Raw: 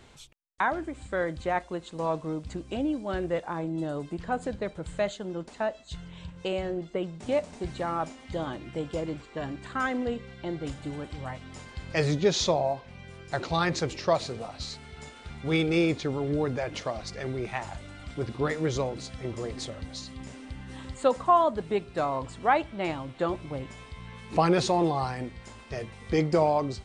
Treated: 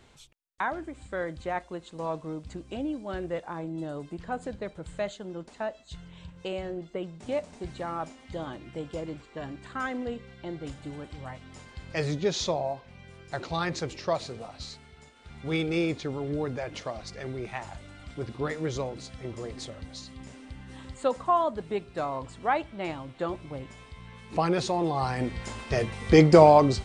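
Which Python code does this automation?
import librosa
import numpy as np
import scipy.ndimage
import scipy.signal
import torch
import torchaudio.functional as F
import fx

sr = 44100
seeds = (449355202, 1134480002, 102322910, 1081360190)

y = fx.gain(x, sr, db=fx.line((14.67, -3.5), (15.13, -10.5), (15.39, -3.0), (24.83, -3.0), (25.35, 8.5)))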